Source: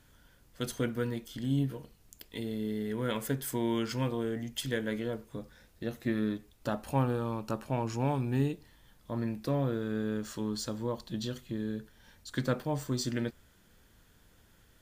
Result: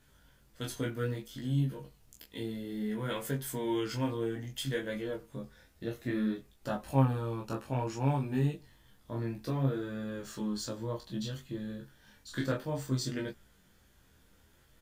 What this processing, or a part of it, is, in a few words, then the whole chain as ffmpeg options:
double-tracked vocal: -filter_complex "[0:a]asplit=2[link_01][link_02];[link_02]adelay=15,volume=-4dB[link_03];[link_01][link_03]amix=inputs=2:normalize=0,flanger=delay=20:depth=6.3:speed=0.6,asettb=1/sr,asplit=3[link_04][link_05][link_06];[link_04]atrim=end=11.784[link_07];[link_05]atrim=start=11.78:end=12.52,asetpts=PTS-STARTPTS,afade=type=in:duration=0.004:curve=qsin,afade=type=out:start_time=0.736:duration=0.004:curve=qsin,asplit=2[link_08][link_09];[link_09]adelay=29,volume=-7.5dB[link_10];[link_08][link_10]amix=inputs=2:normalize=0,atrim=end_sample=32634[link_11];[link_06]atrim=start=12.516[link_12];[link_07][link_11]acrossfade=duration=0.004:curve1=hsin:curve2=qsin[link_13];[link_13][link_12]acrossfade=duration=0.004:curve1=qsin:curve2=hsin"

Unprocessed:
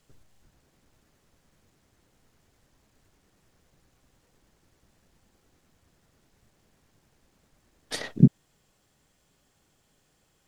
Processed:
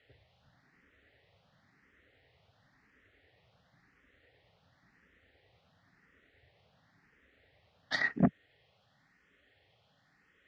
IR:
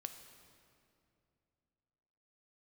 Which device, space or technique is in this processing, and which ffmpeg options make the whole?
barber-pole phaser into a guitar amplifier: -filter_complex "[0:a]asplit=2[link_01][link_02];[link_02]afreqshift=0.95[link_03];[link_01][link_03]amix=inputs=2:normalize=1,asoftclip=type=tanh:threshold=-18dB,highpass=88,equalizer=frequency=150:width_type=q:width=4:gain=-5,equalizer=frequency=220:width_type=q:width=4:gain=-7,equalizer=frequency=340:width_type=q:width=4:gain=-9,equalizer=frequency=1000:width_type=q:width=4:gain=-6,equalizer=frequency=1900:width_type=q:width=4:gain=9,lowpass=frequency=4000:width=0.5412,lowpass=frequency=4000:width=1.3066,volume=4.5dB"

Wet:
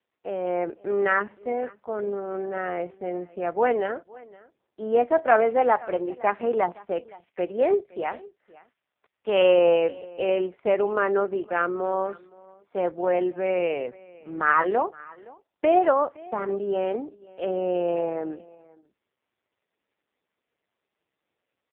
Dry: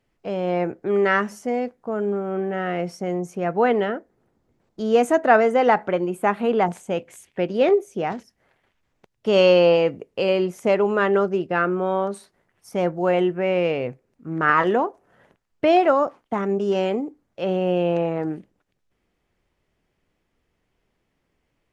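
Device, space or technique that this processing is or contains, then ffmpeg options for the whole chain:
satellite phone: -filter_complex "[0:a]asettb=1/sr,asplit=3[link_01][link_02][link_03];[link_01]atrim=end=8.044[link_04];[link_02]atrim=start=8.04:end=9.42,asetpts=PTS-STARTPTS,afade=type=in:duration=0.004:curve=qsin,afade=type=out:start_time=1.376:duration=0.004:curve=qsin,tiltshelf=frequency=780:gain=-4[link_05];[link_03]atrim=start=9.416[link_06];[link_04][link_05]acrossfade=duration=0.004:curve1=hsin:curve2=qsin[link_07];[link_07][link_06]acrossfade=duration=0.004:curve1=qsin:curve2=hsin,highpass=350,lowpass=3200,aecho=1:1:516:0.075,volume=-1.5dB" -ar 8000 -c:a libopencore_amrnb -b:a 4750

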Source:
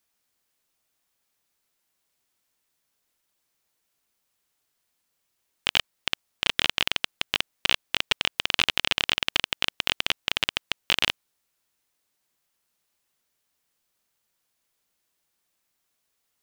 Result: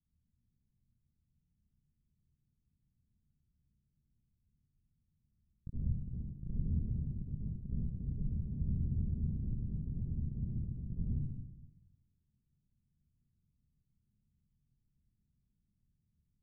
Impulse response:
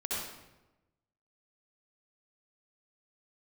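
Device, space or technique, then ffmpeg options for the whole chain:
club heard from the street: -filter_complex "[0:a]alimiter=limit=-10.5dB:level=0:latency=1,lowpass=frequency=160:width=0.5412,lowpass=frequency=160:width=1.3066[link_01];[1:a]atrim=start_sample=2205[link_02];[link_01][link_02]afir=irnorm=-1:irlink=0,volume=15dB"

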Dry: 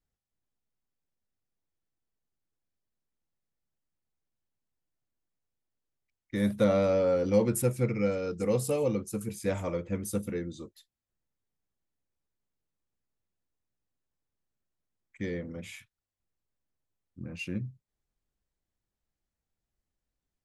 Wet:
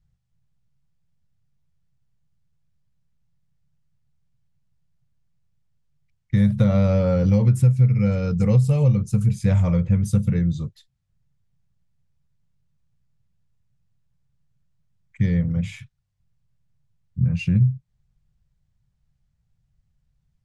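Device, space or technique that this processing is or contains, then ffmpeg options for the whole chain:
jukebox: -af "lowpass=7300,lowshelf=frequency=210:width_type=q:width=3:gain=13,acompressor=threshold=-19dB:ratio=5,volume=5.5dB"

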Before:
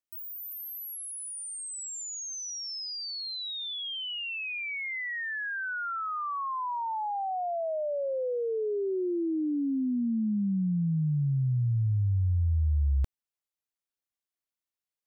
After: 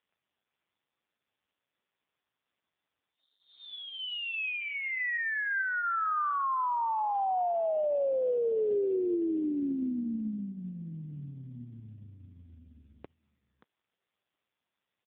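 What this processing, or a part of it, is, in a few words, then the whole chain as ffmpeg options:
satellite phone: -filter_complex "[0:a]asettb=1/sr,asplit=3[link_01][link_02][link_03];[link_01]atrim=end=9.454[link_04];[link_02]atrim=start=9.45:end=10,asetpts=PTS-STARTPTS,afade=type=in:duration=0.004:curve=qsin,afade=type=out:start_time=0.546:duration=0.004:curve=qsin,bandreject=frequency=60:width_type=h:width=6,bandreject=frequency=120:width_type=h:width=6[link_05];[link_03]atrim=start=9.996[link_06];[link_04][link_05]acrossfade=duration=0.004:curve1=hsin:curve2=qsin[link_07];[link_07][link_06]acrossfade=duration=0.004:curve1=qsin:curve2=hsin,highpass=310,lowpass=3100,aecho=1:1:579:0.15,volume=4.5dB" -ar 8000 -c:a libopencore_amrnb -b:a 5150

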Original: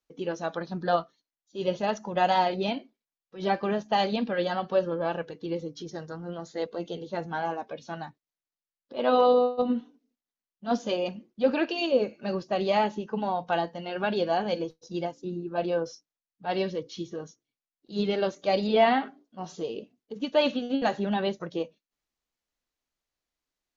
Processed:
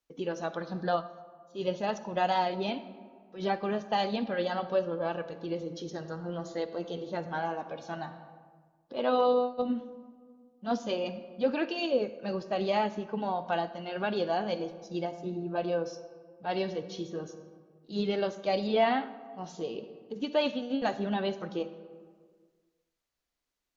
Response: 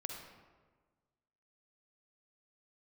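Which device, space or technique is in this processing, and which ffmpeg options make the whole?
ducked reverb: -filter_complex "[0:a]asplit=3[link_01][link_02][link_03];[1:a]atrim=start_sample=2205[link_04];[link_02][link_04]afir=irnorm=-1:irlink=0[link_05];[link_03]apad=whole_len=1047966[link_06];[link_05][link_06]sidechaincompress=threshold=-30dB:ratio=8:attack=6.5:release=1390,volume=4dB[link_07];[link_01][link_07]amix=inputs=2:normalize=0,volume=-6dB"

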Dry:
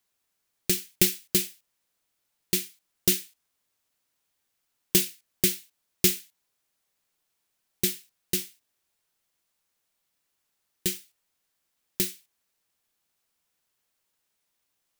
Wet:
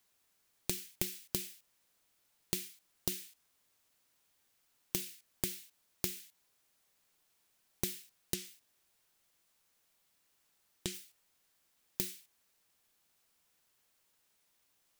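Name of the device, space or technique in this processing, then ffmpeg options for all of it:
serial compression, leveller first: -filter_complex "[0:a]acompressor=threshold=-24dB:ratio=3,acompressor=threshold=-36dB:ratio=6,asettb=1/sr,asplit=3[link_01][link_02][link_03];[link_01]atrim=end=8.344[link_04];[link_02]atrim=start=8.34:end=10.94,asetpts=PTS-STARTPTS,afade=type=in:duration=0.004:curve=qsin,afade=type=out:start_time=2.596:duration=0.004:curve=qsin,acrossover=split=9800[link_05][link_06];[link_06]acompressor=threshold=-54dB:ratio=4:attack=1:release=60[link_07];[link_05][link_07]amix=inputs=2:normalize=0[link_08];[link_03]atrim=start=10.936[link_09];[link_04][link_08]acrossfade=duration=0.004:curve1=hsin:curve2=qsin[link_10];[link_10][link_09]acrossfade=duration=0.004:curve1=qsin:curve2=hsin,volume=3dB"

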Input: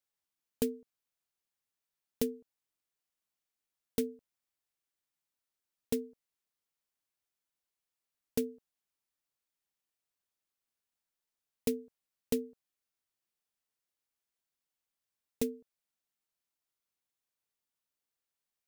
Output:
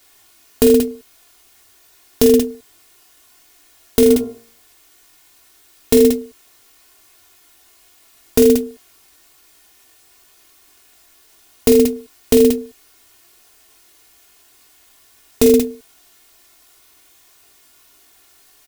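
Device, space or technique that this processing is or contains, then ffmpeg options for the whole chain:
loud club master: -filter_complex "[0:a]aecho=1:1:2.8:0.8,asplit=3[link_01][link_02][link_03];[link_01]afade=type=out:start_time=4.05:duration=0.02[link_04];[link_02]bandreject=frequency=57.99:width_type=h:width=4,bandreject=frequency=115.98:width_type=h:width=4,bandreject=frequency=173.97:width_type=h:width=4,bandreject=frequency=231.96:width_type=h:width=4,bandreject=frequency=289.95:width_type=h:width=4,bandreject=frequency=347.94:width_type=h:width=4,bandreject=frequency=405.93:width_type=h:width=4,bandreject=frequency=463.92:width_type=h:width=4,bandreject=frequency=521.91:width_type=h:width=4,bandreject=frequency=579.9:width_type=h:width=4,bandreject=frequency=637.89:width_type=h:width=4,bandreject=frequency=695.88:width_type=h:width=4,bandreject=frequency=753.87:width_type=h:width=4,bandreject=frequency=811.86:width_type=h:width=4,bandreject=frequency=869.85:width_type=h:width=4,bandreject=frequency=927.84:width_type=h:width=4,bandreject=frequency=985.83:width_type=h:width=4,bandreject=frequency=1043.82:width_type=h:width=4,bandreject=frequency=1101.81:width_type=h:width=4,bandreject=frequency=1159.8:width_type=h:width=4,bandreject=frequency=1217.79:width_type=h:width=4,bandreject=frequency=1275.78:width_type=h:width=4,bandreject=frequency=1333.77:width_type=h:width=4,bandreject=frequency=1391.76:width_type=h:width=4,bandreject=frequency=1449.75:width_type=h:width=4,afade=type=in:start_time=4.05:duration=0.02,afade=type=out:start_time=5.94:duration=0.02[link_05];[link_03]afade=type=in:start_time=5.94:duration=0.02[link_06];[link_04][link_05][link_06]amix=inputs=3:normalize=0,aecho=1:1:20|46|79.8|123.7|180.9:0.631|0.398|0.251|0.158|0.1,acompressor=threshold=-36dB:ratio=2.5,asoftclip=type=hard:threshold=-23.5dB,alimiter=level_in=34.5dB:limit=-1dB:release=50:level=0:latency=1,volume=-1dB"

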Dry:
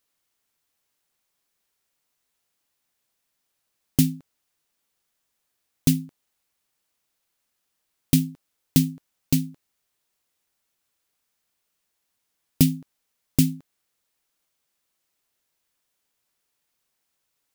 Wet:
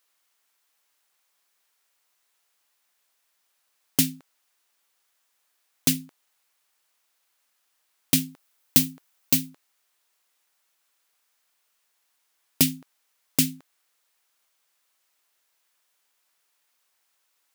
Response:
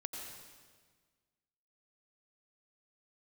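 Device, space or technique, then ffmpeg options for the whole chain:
filter by subtraction: -filter_complex "[0:a]asplit=2[link_01][link_02];[link_02]lowpass=1100,volume=-1[link_03];[link_01][link_03]amix=inputs=2:normalize=0,asettb=1/sr,asplit=3[link_04][link_05][link_06];[link_04]atrim=end=8.314[link_07];[link_05]atrim=start=8.31:end=9.5,asetpts=PTS-STARTPTS,afade=type=in:duration=0.004:curve=qsin,afade=type=out:start_time=1.186:duration=0.004:curve=qsin,highshelf=frequency=12000:gain=5.5[link_08];[link_06]atrim=start=9.496[link_09];[link_07][link_08]acrossfade=duration=0.004:curve1=hsin:curve2=qsin[link_10];[link_10][link_09]acrossfade=duration=0.004:curve1=qsin:curve2=hsin,volume=4.5dB"

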